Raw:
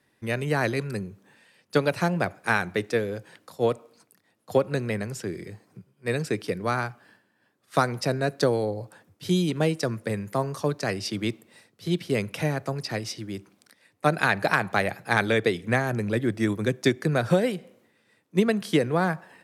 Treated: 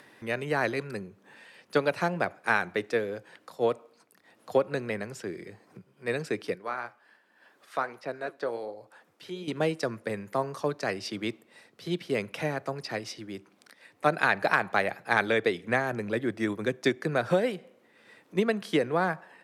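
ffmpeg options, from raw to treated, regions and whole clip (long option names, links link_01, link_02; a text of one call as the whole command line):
ffmpeg -i in.wav -filter_complex "[0:a]asettb=1/sr,asplit=3[link_01][link_02][link_03];[link_01]atrim=end=6.554[link_04];[link_02]atrim=start=6.55:end=9.48,asetpts=PTS-STARTPTS,afade=type=in:duration=0.004:curve=qsin,afade=type=out:start_time=2.926:duration=0.004:curve=qsin,highpass=frequency=480:poles=1,acrossover=split=3000[link_05][link_06];[link_06]acompressor=threshold=-46dB:ratio=4:attack=1:release=60[link_07];[link_05][link_07]amix=inputs=2:normalize=0,flanger=delay=0.1:depth=9.4:regen=73:speed=1.3:shape=sinusoidal[link_08];[link_03]atrim=start=9.476[link_09];[link_04][link_08]acrossfade=duration=0.004:curve1=hsin:curve2=qsin[link_10];[link_10][link_09]acrossfade=duration=0.004:curve1=qsin:curve2=hsin,highpass=frequency=380:poles=1,acompressor=mode=upward:threshold=-40dB:ratio=2.5,highshelf=frequency=4500:gain=-9.5" out.wav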